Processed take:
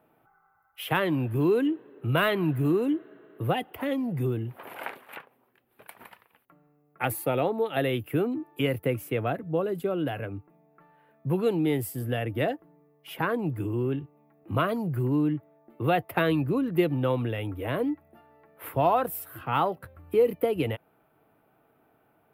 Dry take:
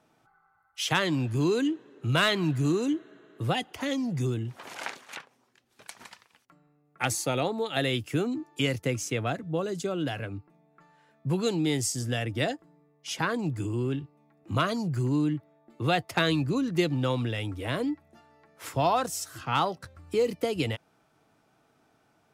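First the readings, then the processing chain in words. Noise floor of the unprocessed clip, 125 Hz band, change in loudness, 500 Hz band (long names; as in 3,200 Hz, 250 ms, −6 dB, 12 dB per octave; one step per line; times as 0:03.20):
−68 dBFS, 0.0 dB, +1.0 dB, +3.5 dB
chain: drawn EQ curve 240 Hz 0 dB, 450 Hz +4 dB, 2,800 Hz −3 dB, 6,400 Hz −26 dB, 13,000 Hz +10 dB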